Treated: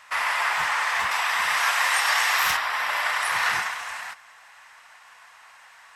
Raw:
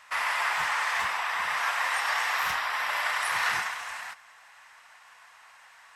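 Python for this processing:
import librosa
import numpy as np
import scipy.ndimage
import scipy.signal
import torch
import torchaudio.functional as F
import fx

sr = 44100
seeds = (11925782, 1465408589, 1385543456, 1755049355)

y = fx.high_shelf(x, sr, hz=2800.0, db=8.0, at=(1.11, 2.57))
y = y * librosa.db_to_amplitude(3.5)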